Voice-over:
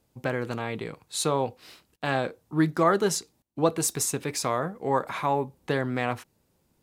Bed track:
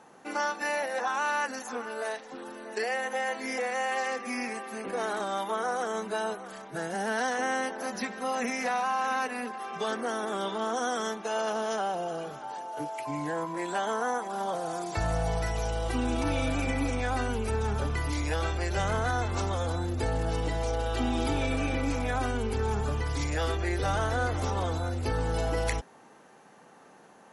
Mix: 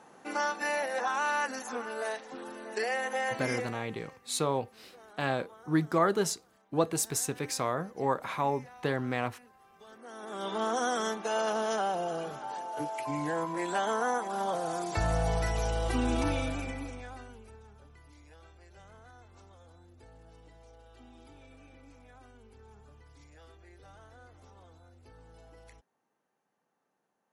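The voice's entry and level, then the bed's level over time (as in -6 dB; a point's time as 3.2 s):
3.15 s, -4.0 dB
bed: 3.55 s -1 dB
3.85 s -23 dB
9.86 s -23 dB
10.57 s 0 dB
16.22 s 0 dB
17.72 s -26 dB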